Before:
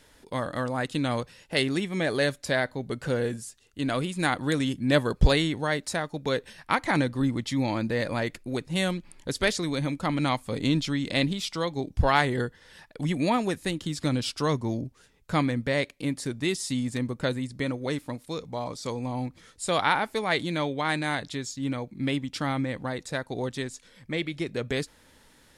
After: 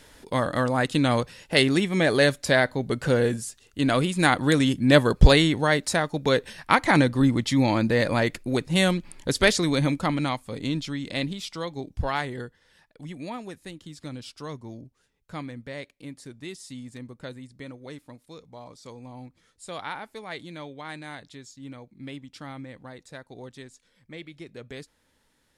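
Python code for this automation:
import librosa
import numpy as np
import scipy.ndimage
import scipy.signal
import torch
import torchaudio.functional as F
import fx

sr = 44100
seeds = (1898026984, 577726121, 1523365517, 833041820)

y = fx.gain(x, sr, db=fx.line((9.91, 5.5), (10.41, -3.5), (11.77, -3.5), (13.01, -11.0)))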